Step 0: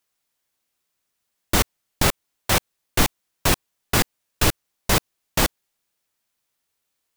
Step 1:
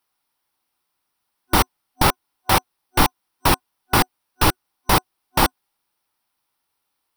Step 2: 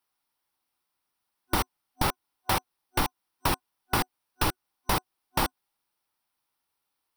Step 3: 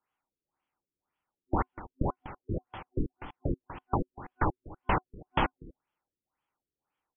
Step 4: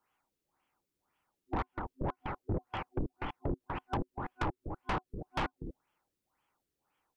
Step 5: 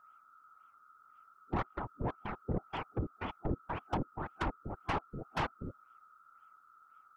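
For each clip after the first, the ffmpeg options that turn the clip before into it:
ffmpeg -i in.wav -af "superequalizer=6b=1.41:9b=2.51:10b=1.78:15b=0.316,volume=1dB" out.wav
ffmpeg -i in.wav -af "acompressor=threshold=-16dB:ratio=6,volume=-5.5dB" out.wav
ffmpeg -i in.wav -af "aecho=1:1:244:0.141,afftfilt=real='re*lt(b*sr/1024,460*pow(3500/460,0.5+0.5*sin(2*PI*1.9*pts/sr)))':imag='im*lt(b*sr/1024,460*pow(3500/460,0.5+0.5*sin(2*PI*1.9*pts/sr)))':win_size=1024:overlap=0.75" out.wav
ffmpeg -i in.wav -af "acompressor=threshold=-31dB:ratio=5,asoftclip=type=tanh:threshold=-34dB,volume=6.5dB" out.wav
ffmpeg -i in.wav -af "aeval=exprs='val(0)+0.00126*sin(2*PI*1300*n/s)':channel_layout=same,afftfilt=real='hypot(re,im)*cos(2*PI*random(0))':imag='hypot(re,im)*sin(2*PI*random(1))':win_size=512:overlap=0.75,volume=5.5dB" out.wav

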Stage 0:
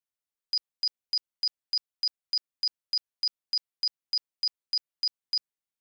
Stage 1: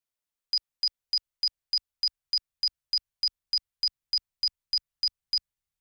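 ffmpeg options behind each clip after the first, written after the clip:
ffmpeg -i in.wav -af "asubboost=boost=10:cutoff=100,volume=1.5dB" out.wav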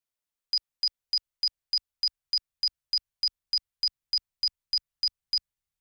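ffmpeg -i in.wav -af anull out.wav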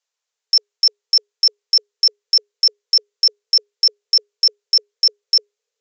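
ffmpeg -i in.wav -af "afreqshift=410,highshelf=frequency=6100:gain=9.5,aresample=16000,aresample=44100,volume=8.5dB" out.wav

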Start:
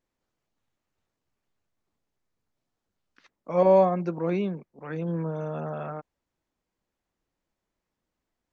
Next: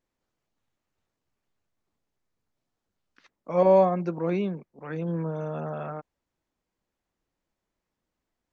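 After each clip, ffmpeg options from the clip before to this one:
ffmpeg -i in.wav -af anull out.wav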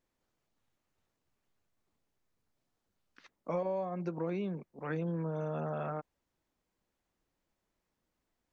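ffmpeg -i in.wav -af "acompressor=threshold=-31dB:ratio=20" out.wav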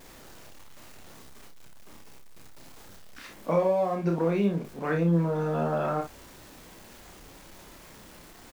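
ffmpeg -i in.wav -af "aeval=exprs='val(0)+0.5*0.00251*sgn(val(0))':channel_layout=same,aecho=1:1:30|59:0.596|0.398,volume=7.5dB" out.wav

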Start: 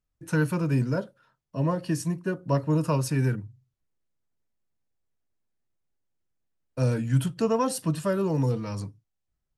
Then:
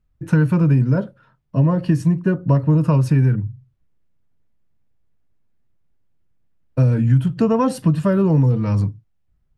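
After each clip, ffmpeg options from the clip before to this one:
ffmpeg -i in.wav -af "bass=frequency=250:gain=9,treble=frequency=4000:gain=-12,acompressor=threshold=-20dB:ratio=6,volume=8dB" out.wav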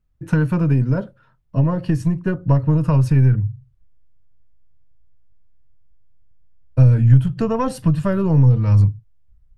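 ffmpeg -i in.wav -af "aeval=exprs='0.562*(cos(1*acos(clip(val(0)/0.562,-1,1)))-cos(1*PI/2))+0.0398*(cos(2*acos(clip(val(0)/0.562,-1,1)))-cos(2*PI/2))+0.0355*(cos(3*acos(clip(val(0)/0.562,-1,1)))-cos(3*PI/2))':channel_layout=same,asubboost=boost=6:cutoff=93" out.wav

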